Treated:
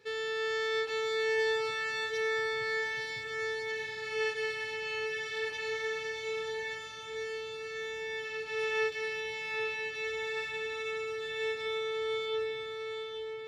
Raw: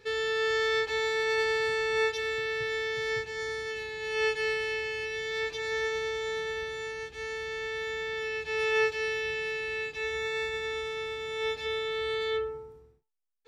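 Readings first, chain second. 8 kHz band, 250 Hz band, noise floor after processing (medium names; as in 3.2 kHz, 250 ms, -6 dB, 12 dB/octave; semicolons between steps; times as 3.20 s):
-3.5 dB, no reading, -41 dBFS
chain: high-pass 120 Hz 12 dB/octave; echo that smears into a reverb 846 ms, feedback 43%, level -4 dB; trim -5 dB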